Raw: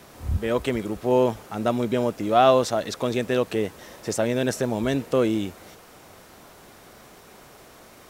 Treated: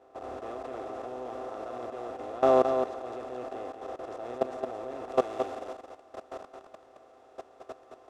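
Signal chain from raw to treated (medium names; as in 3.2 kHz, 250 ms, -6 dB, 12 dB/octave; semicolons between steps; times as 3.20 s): spectral levelling over time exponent 0.2; feedback comb 130 Hz, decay 0.15 s, harmonics all, mix 70%; expander -9 dBFS; resonant low shelf 240 Hz -9.5 dB, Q 1.5; level held to a coarse grid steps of 19 dB; low-pass 1.4 kHz 6 dB/octave, from 5.09 s 2.8 kHz; delay 219 ms -6.5 dB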